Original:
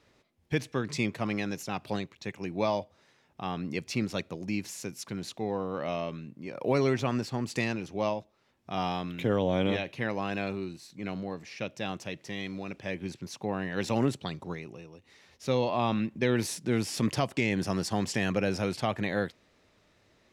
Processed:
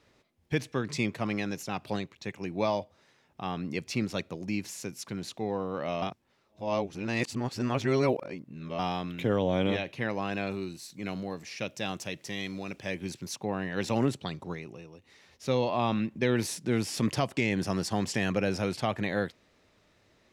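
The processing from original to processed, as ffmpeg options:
ffmpeg -i in.wav -filter_complex "[0:a]asettb=1/sr,asplit=3[link_01][link_02][link_03];[link_01]atrim=end=10.514[link_04];[link_02]atrim=start=10.51:end=13.36,asetpts=PTS-STARTPTS,afade=type=in:duration=0.004:curve=qsin,afade=type=out:start_time=2.846:duration=0.004:curve=qsin,highshelf=frequency=5100:gain=10[link_05];[link_03]atrim=start=13.356[link_06];[link_04][link_05]acrossfade=duration=0.004:curve1=hsin:curve2=qsin[link_07];[link_07][link_06]acrossfade=duration=0.004:curve1=qsin:curve2=hsin,asplit=3[link_08][link_09][link_10];[link_08]atrim=end=6.022[link_11];[link_09]atrim=start=6.018:end=8.792,asetpts=PTS-STARTPTS,areverse[link_12];[link_10]atrim=start=8.788[link_13];[link_11][link_12]acrossfade=duration=0.004:curve1=hsin:curve2=hsin[link_14];[link_14][link_13]acrossfade=duration=0.004:curve1=hsin:curve2=hsin" out.wav

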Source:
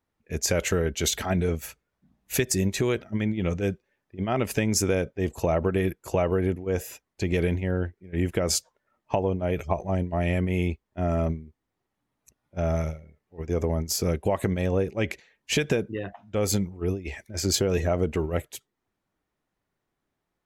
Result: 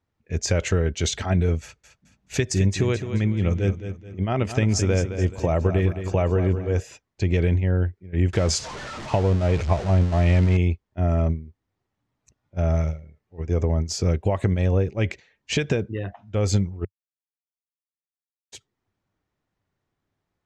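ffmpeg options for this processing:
ffmpeg -i in.wav -filter_complex "[0:a]asettb=1/sr,asplit=3[link_01][link_02][link_03];[link_01]atrim=end=1.624[link_04];[link_02]atrim=start=1.62:end=6.8,asetpts=PTS-STARTPTS,afade=type=in:duration=0.004:curve=qsin,afade=type=out:start_time=5.176:duration=0.004:curve=qsin,aecho=1:1:215|430|645|860:0.316|0.117|0.0433|0.016,atrim=end_sample=228438[link_05];[link_03]atrim=start=6.796[link_06];[link_04][link_05]acrossfade=duration=0.004:curve1=hsin:curve2=qsin[link_07];[link_07][link_06]acrossfade=duration=0.004:curve1=qsin:curve2=hsin,asettb=1/sr,asplit=3[link_08][link_09][link_10];[link_08]atrim=end=8.334[link_11];[link_09]atrim=start=8.33:end=10.57,asetpts=PTS-STARTPTS,afade=type=in:duration=0.004:curve=qsin,afade=type=out:start_time=2.236:duration=0.004:curve=qsin,aeval=exprs='val(0)+0.5*0.0355*sgn(val(0))':channel_layout=same[link_12];[link_10]atrim=start=10.566[link_13];[link_11][link_12]acrossfade=duration=0.004:curve1=hsin:curve2=qsin[link_14];[link_14][link_13]acrossfade=duration=0.004:curve1=qsin:curve2=hsin,asplit=3[link_15][link_16][link_17];[link_15]atrim=end=16.85,asetpts=PTS-STARTPTS,afade=type=out:start_time=16.846:duration=0.004:curve=hsin[link_18];[link_16]atrim=start=16.85:end=18.52,asetpts=PTS-STARTPTS,volume=0[link_19];[link_17]atrim=start=18.52,asetpts=PTS-STARTPTS,afade=type=in:duration=0.004:curve=hsin[link_20];[link_18][link_19][link_20]concat=n=3:v=0:a=1,lowpass=frequency=7200:width=0.5412,lowpass=frequency=7200:width=1.3066,equalizer=frequency=97:width_type=o:width=1:gain=9" out.wav

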